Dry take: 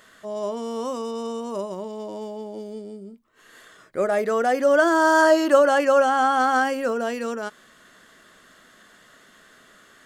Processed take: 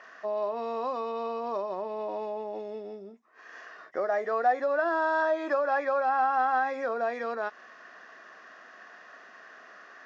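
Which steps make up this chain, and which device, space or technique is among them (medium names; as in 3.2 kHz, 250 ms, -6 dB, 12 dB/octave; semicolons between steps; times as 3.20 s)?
hearing aid with frequency lowering (knee-point frequency compression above 1.9 kHz 1.5:1; compression 3:1, threshold -31 dBFS, peak gain reduction 14.5 dB; cabinet simulation 350–6100 Hz, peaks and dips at 730 Hz +9 dB, 1.1 kHz +5 dB, 1.8 kHz +6 dB, 3 kHz -6 dB, 4.5 kHz -8 dB)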